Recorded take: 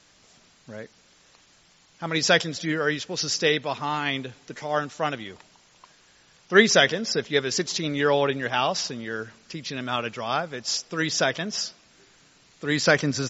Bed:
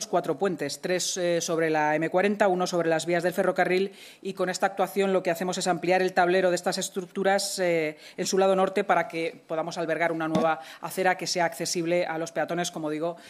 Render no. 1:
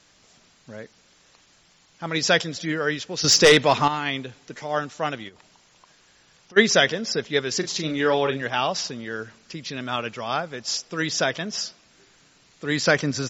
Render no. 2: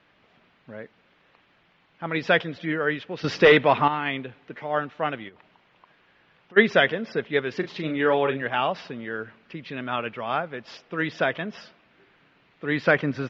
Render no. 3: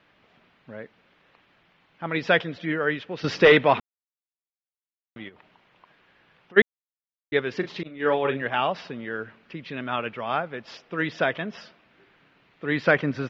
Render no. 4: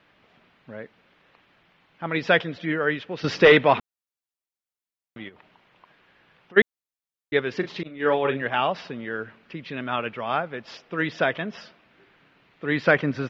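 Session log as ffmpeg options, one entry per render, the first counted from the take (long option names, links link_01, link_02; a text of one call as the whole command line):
ffmpeg -i in.wav -filter_complex "[0:a]asettb=1/sr,asplit=3[link_01][link_02][link_03];[link_01]atrim=end=3.244[link_04];[link_02]atrim=start=3.24:end=3.88,asetpts=PTS-STARTPTS,afade=type=in:duration=0.004:curve=qsin,afade=type=out:start_time=0.636:duration=0.004:curve=qsin,aeval=exprs='0.447*sin(PI/2*2.24*val(0)/0.447)':channel_layout=same[link_05];[link_03]atrim=start=3.876[link_06];[link_04][link_05]acrossfade=duration=0.004:curve1=hsin:curve2=qsin[link_07];[link_07][link_06]acrossfade=duration=0.004:curve1=qsin:curve2=hsin,asplit=3[link_08][link_09][link_10];[link_08]afade=type=out:start_time=5.28:duration=0.02[link_11];[link_09]acompressor=threshold=-46dB:ratio=6:attack=3.2:release=140:knee=1:detection=peak,afade=type=in:start_time=5.28:duration=0.02,afade=type=out:start_time=6.56:duration=0.02[link_12];[link_10]afade=type=in:start_time=6.56:duration=0.02[link_13];[link_11][link_12][link_13]amix=inputs=3:normalize=0,asettb=1/sr,asplit=3[link_14][link_15][link_16];[link_14]atrim=end=7.584[link_17];[link_15]atrim=start=7.58:end=8.42,asetpts=PTS-STARTPTS,afade=type=in:duration=0.004:curve=qsin,afade=type=out:start_time=0.836:duration=0.004:curve=qsin,asplit=2[link_18][link_19];[link_19]adelay=38,volume=-9dB[link_20];[link_18][link_20]amix=inputs=2:normalize=0,atrim=end_sample=37044[link_21];[link_16]atrim=start=8.416[link_22];[link_17][link_21]acrossfade=duration=0.004:curve1=hsin:curve2=qsin[link_23];[link_23][link_22]acrossfade=duration=0.004:curve1=qsin:curve2=hsin" out.wav
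ffmpeg -i in.wav -af "lowpass=frequency=2900:width=0.5412,lowpass=frequency=2900:width=1.3066,lowshelf=frequency=69:gain=-11" out.wav
ffmpeg -i in.wav -filter_complex "[0:a]asettb=1/sr,asplit=3[link_01][link_02][link_03];[link_01]atrim=end=7.834[link_04];[link_02]atrim=start=7.83:end=8.25,asetpts=PTS-STARTPTS,afade=type=in:duration=0.004:curve=qsin,afade=type=out:start_time=0.416:duration=0.004:curve=qsin,agate=range=-33dB:threshold=-19dB:ratio=3:release=100:detection=peak[link_05];[link_03]atrim=start=8.246[link_06];[link_04][link_05]acrossfade=duration=0.004:curve1=hsin:curve2=qsin[link_07];[link_07][link_06]acrossfade=duration=0.004:curve1=qsin:curve2=hsin,asplit=5[link_08][link_09][link_10][link_11][link_12];[link_08]atrim=end=3.8,asetpts=PTS-STARTPTS,afade=type=out:start_time=3.796:duration=0.004:curve=hsin[link_13];[link_09]atrim=start=3.8:end=5.16,asetpts=PTS-STARTPTS,volume=0[link_14];[link_10]atrim=start=5.16:end=6.62,asetpts=PTS-STARTPTS,afade=type=in:duration=0.004:curve=hsin,afade=type=out:start_time=1.456:duration=0.004:curve=hsin[link_15];[link_11]atrim=start=6.62:end=7.32,asetpts=PTS-STARTPTS,volume=0[link_16];[link_12]atrim=start=7.32,asetpts=PTS-STARTPTS,afade=type=in:duration=0.004:curve=hsin[link_17];[link_13][link_14][link_15][link_16][link_17]concat=n=5:v=0:a=1" out.wav
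ffmpeg -i in.wav -af "volume=1dB,alimiter=limit=-3dB:level=0:latency=1" out.wav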